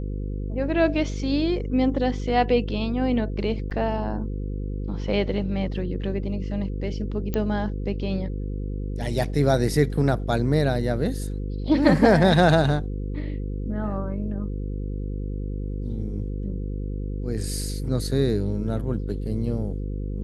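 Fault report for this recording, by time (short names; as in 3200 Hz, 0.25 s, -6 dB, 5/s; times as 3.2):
buzz 50 Hz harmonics 10 -29 dBFS
3.7–3.71 gap 8.8 ms
7.34 pop -13 dBFS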